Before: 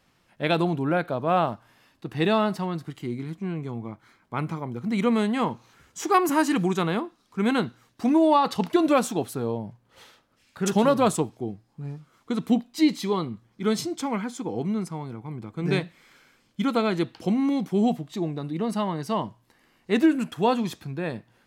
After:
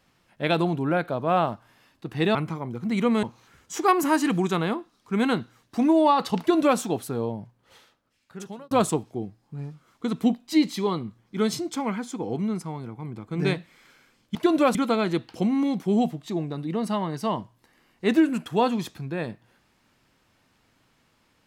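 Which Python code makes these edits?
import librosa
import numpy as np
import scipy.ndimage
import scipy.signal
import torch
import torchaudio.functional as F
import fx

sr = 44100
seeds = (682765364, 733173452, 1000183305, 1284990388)

y = fx.edit(x, sr, fx.cut(start_s=2.35, length_s=2.01),
    fx.cut(start_s=5.24, length_s=0.25),
    fx.duplicate(start_s=8.65, length_s=0.4, to_s=16.61),
    fx.fade_out_span(start_s=9.56, length_s=1.41), tone=tone)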